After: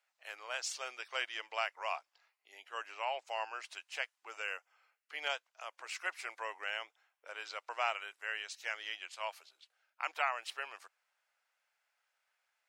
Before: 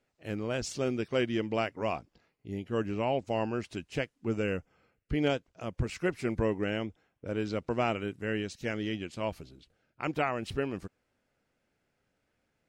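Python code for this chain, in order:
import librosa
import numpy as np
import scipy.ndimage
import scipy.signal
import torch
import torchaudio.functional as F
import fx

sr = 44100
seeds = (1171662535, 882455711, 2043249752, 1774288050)

y = scipy.signal.sosfilt(scipy.signal.cheby2(4, 70, 180.0, 'highpass', fs=sr, output='sos'), x)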